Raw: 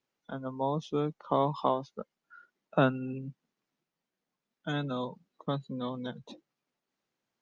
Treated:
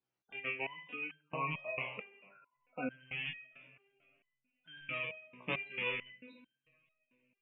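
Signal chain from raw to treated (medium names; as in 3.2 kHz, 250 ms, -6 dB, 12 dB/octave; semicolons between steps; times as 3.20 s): rattle on loud lows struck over -40 dBFS, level -16 dBFS; 1.04–1.59 s: low-pass 3.5 kHz 6 dB/octave; two-slope reverb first 0.86 s, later 3.5 s, from -22 dB, DRR 5.5 dB; spectral gate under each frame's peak -15 dB strong; resonator arpeggio 4.5 Hz 62–1600 Hz; trim +1.5 dB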